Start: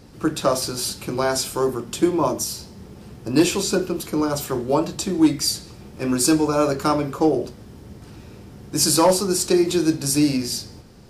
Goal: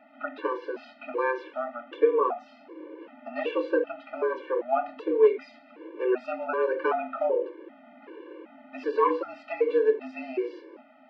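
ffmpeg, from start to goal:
-filter_complex "[0:a]aemphasis=mode=production:type=50fm,asplit=2[a][b];[b]acompressor=threshold=-28dB:ratio=6,volume=0dB[c];[a][c]amix=inputs=2:normalize=0,highpass=f=170:t=q:w=0.5412,highpass=f=170:t=q:w=1.307,lowpass=f=2.5k:t=q:w=0.5176,lowpass=f=2.5k:t=q:w=0.7071,lowpass=f=2.5k:t=q:w=1.932,afreqshift=120,afftfilt=real='re*gt(sin(2*PI*1.3*pts/sr)*(1-2*mod(floor(b*sr/1024/300),2)),0)':imag='im*gt(sin(2*PI*1.3*pts/sr)*(1-2*mod(floor(b*sr/1024/300),2)),0)':win_size=1024:overlap=0.75,volume=-4dB"

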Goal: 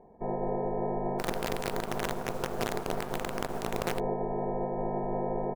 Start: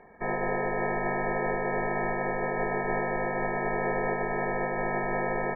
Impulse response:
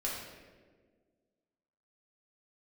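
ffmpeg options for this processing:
-filter_complex "[0:a]firequalizer=gain_entry='entry(260,0);entry(940,-4);entry(1400,-24)':delay=0.05:min_phase=1,asplit=3[a][b][c];[a]afade=t=out:st=1.18:d=0.02[d];[b]acrusher=bits=5:dc=4:mix=0:aa=0.000001,afade=t=in:st=1.18:d=0.02,afade=t=out:st=3.98:d=0.02[e];[c]afade=t=in:st=3.98:d=0.02[f];[d][e][f]amix=inputs=3:normalize=0"

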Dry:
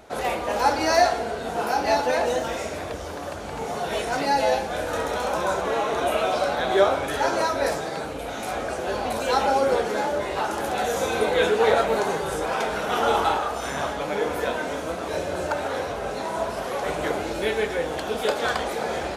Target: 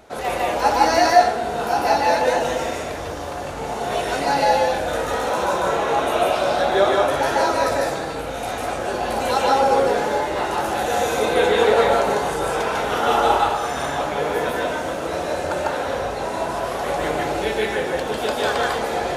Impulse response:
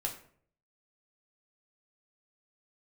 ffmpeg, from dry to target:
-filter_complex "[0:a]asplit=2[a][b];[1:a]atrim=start_sample=2205,adelay=148[c];[b][c]afir=irnorm=-1:irlink=0,volume=-0.5dB[d];[a][d]amix=inputs=2:normalize=0"

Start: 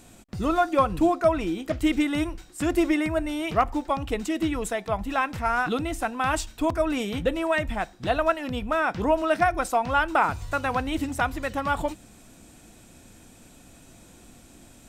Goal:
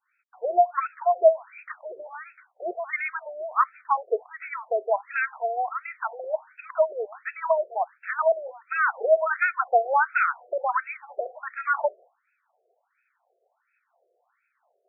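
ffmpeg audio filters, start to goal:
-af "agate=range=-33dB:threshold=-40dB:ratio=3:detection=peak,afftfilt=real='re*between(b*sr/1024,500*pow(1900/500,0.5+0.5*sin(2*PI*1.4*pts/sr))/1.41,500*pow(1900/500,0.5+0.5*sin(2*PI*1.4*pts/sr))*1.41)':imag='im*between(b*sr/1024,500*pow(1900/500,0.5+0.5*sin(2*PI*1.4*pts/sr))/1.41,500*pow(1900/500,0.5+0.5*sin(2*PI*1.4*pts/sr))*1.41)':win_size=1024:overlap=0.75,volume=5dB"

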